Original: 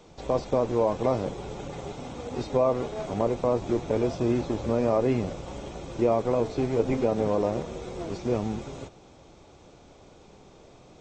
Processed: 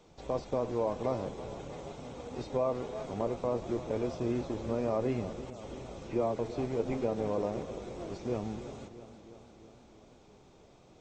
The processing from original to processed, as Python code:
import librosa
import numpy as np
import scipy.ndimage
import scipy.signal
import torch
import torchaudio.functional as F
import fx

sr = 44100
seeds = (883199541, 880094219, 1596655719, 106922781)

y = fx.dispersion(x, sr, late='lows', ms=141.0, hz=3000.0, at=(5.5, 6.39))
y = fx.echo_warbled(y, sr, ms=330, feedback_pct=66, rate_hz=2.8, cents=63, wet_db=-14)
y = F.gain(torch.from_numpy(y), -7.5).numpy()